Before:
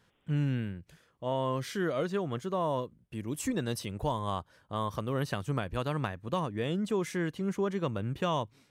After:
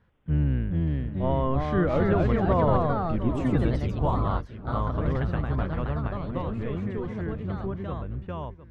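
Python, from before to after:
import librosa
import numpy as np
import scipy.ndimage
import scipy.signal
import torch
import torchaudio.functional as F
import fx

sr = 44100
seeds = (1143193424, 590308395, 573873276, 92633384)

p1 = fx.octave_divider(x, sr, octaves=1, level_db=-4.0)
p2 = fx.doppler_pass(p1, sr, speed_mps=7, closest_m=6.9, pass_at_s=2.47)
p3 = scipy.signal.sosfilt(scipy.signal.butter(2, 2000.0, 'lowpass', fs=sr, output='sos'), p2)
p4 = fx.low_shelf(p3, sr, hz=100.0, db=11.0)
p5 = p4 + fx.echo_feedback(p4, sr, ms=707, feedback_pct=32, wet_db=-15.0, dry=0)
p6 = fx.echo_pitch(p5, sr, ms=459, semitones=2, count=2, db_per_echo=-3.0)
p7 = fx.rider(p6, sr, range_db=3, speed_s=0.5)
y = p6 + F.gain(torch.from_numpy(p7), 2.0).numpy()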